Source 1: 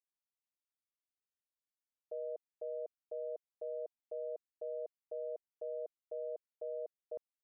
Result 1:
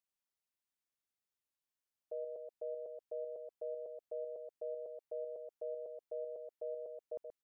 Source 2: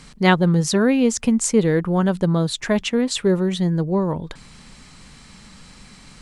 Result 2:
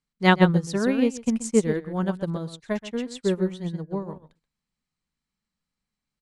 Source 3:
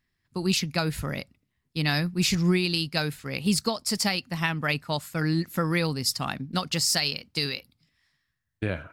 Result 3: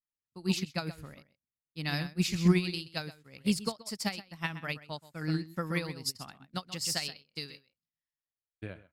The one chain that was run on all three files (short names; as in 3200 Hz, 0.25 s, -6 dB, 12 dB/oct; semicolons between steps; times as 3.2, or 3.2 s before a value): outdoor echo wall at 22 m, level -7 dB; upward expander 2.5:1, over -39 dBFS